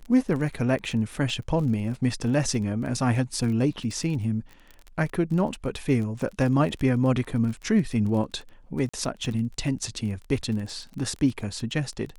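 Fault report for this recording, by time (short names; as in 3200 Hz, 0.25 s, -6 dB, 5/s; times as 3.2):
crackle 23/s -32 dBFS
8.89–8.94 gap 45 ms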